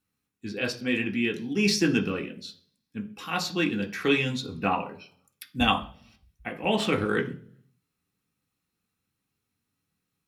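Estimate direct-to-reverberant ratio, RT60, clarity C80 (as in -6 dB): 1.5 dB, 0.45 s, 19.0 dB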